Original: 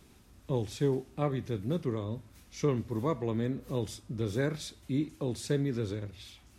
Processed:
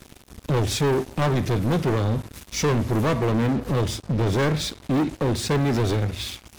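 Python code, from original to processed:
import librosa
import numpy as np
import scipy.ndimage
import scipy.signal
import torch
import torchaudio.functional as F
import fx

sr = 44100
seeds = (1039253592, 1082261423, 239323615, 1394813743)

y = fx.high_shelf(x, sr, hz=5200.0, db=-11.0, at=(3.25, 5.61))
y = fx.leveller(y, sr, passes=5)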